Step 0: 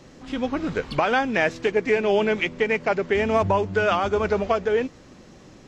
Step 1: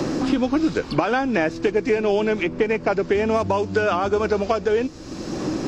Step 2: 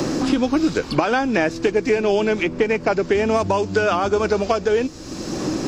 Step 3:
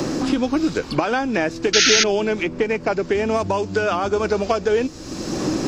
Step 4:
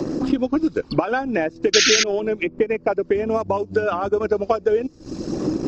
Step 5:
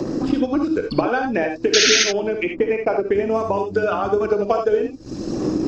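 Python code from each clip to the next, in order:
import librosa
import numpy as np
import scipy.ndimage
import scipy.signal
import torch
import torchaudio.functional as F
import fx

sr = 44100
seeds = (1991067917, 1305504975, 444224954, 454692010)

y1 = fx.graphic_eq_31(x, sr, hz=(315, 2000, 3150, 5000), db=(9, -6, -4, 5))
y1 = fx.band_squash(y1, sr, depth_pct=100)
y2 = fx.high_shelf(y1, sr, hz=6400.0, db=9.5)
y2 = F.gain(torch.from_numpy(y2), 1.5).numpy()
y3 = fx.rider(y2, sr, range_db=4, speed_s=2.0)
y3 = fx.spec_paint(y3, sr, seeds[0], shape='noise', start_s=1.73, length_s=0.31, low_hz=1300.0, high_hz=6700.0, level_db=-14.0)
y3 = F.gain(torch.from_numpy(y3), -1.5).numpy()
y4 = fx.envelope_sharpen(y3, sr, power=1.5)
y4 = fx.transient(y4, sr, attack_db=3, sustain_db=-11)
y4 = F.gain(torch.from_numpy(y4), -1.0).numpy()
y5 = fx.rev_gated(y4, sr, seeds[1], gate_ms=100, shape='rising', drr_db=4.0)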